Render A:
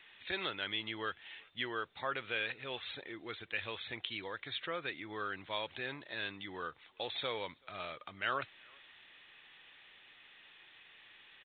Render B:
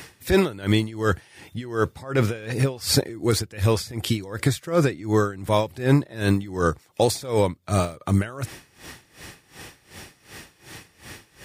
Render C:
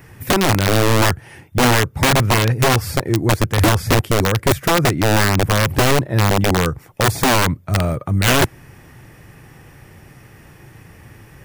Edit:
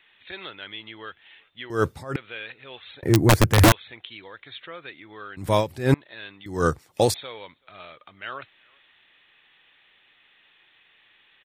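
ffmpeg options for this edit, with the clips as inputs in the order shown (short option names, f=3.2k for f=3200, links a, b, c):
-filter_complex "[1:a]asplit=3[a][b][c];[0:a]asplit=5[d][e][f][g][h];[d]atrim=end=1.702[i];[a]atrim=start=1.698:end=2.162[j];[e]atrim=start=2.158:end=3.032[k];[2:a]atrim=start=3.028:end=3.722[l];[f]atrim=start=3.718:end=5.372[m];[b]atrim=start=5.368:end=5.942[n];[g]atrim=start=5.938:end=6.462[o];[c]atrim=start=6.458:end=7.142[p];[h]atrim=start=7.138[q];[i][j]acrossfade=d=0.004:c1=hsin:c2=hsin[r];[r][k]acrossfade=d=0.004:c1=hsin:c2=hsin[s];[s][l]acrossfade=d=0.004:c1=hsin:c2=hsin[t];[t][m]acrossfade=d=0.004:c1=hsin:c2=hsin[u];[u][n]acrossfade=d=0.004:c1=hsin:c2=hsin[v];[v][o]acrossfade=d=0.004:c1=hsin:c2=hsin[w];[w][p]acrossfade=d=0.004:c1=hsin:c2=hsin[x];[x][q]acrossfade=d=0.004:c1=hsin:c2=hsin"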